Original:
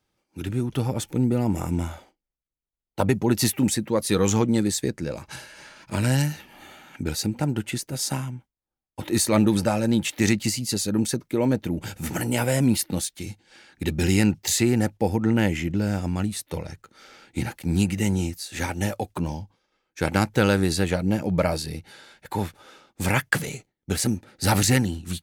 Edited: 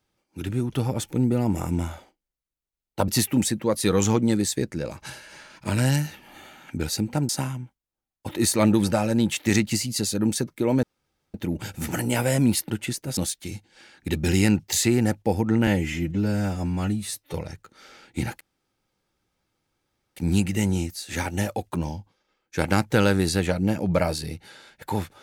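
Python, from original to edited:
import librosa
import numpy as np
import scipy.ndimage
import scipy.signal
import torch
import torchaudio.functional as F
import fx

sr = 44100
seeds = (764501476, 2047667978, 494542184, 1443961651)

y = fx.edit(x, sr, fx.cut(start_s=3.08, length_s=0.26),
    fx.move(start_s=7.55, length_s=0.47, to_s=12.92),
    fx.insert_room_tone(at_s=11.56, length_s=0.51),
    fx.stretch_span(start_s=15.42, length_s=1.11, factor=1.5),
    fx.insert_room_tone(at_s=17.6, length_s=1.76), tone=tone)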